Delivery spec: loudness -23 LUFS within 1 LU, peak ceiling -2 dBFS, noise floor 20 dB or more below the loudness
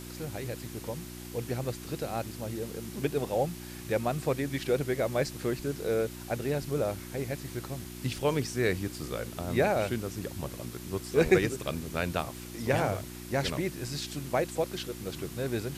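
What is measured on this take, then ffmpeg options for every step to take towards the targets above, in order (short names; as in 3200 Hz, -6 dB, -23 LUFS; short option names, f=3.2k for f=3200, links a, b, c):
hum 60 Hz; harmonics up to 360 Hz; hum level -41 dBFS; noise floor -43 dBFS; noise floor target -52 dBFS; loudness -32.0 LUFS; peak -9.0 dBFS; loudness target -23.0 LUFS
-> -af "bandreject=f=60:t=h:w=4,bandreject=f=120:t=h:w=4,bandreject=f=180:t=h:w=4,bandreject=f=240:t=h:w=4,bandreject=f=300:t=h:w=4,bandreject=f=360:t=h:w=4"
-af "afftdn=nr=9:nf=-43"
-af "volume=9dB,alimiter=limit=-2dB:level=0:latency=1"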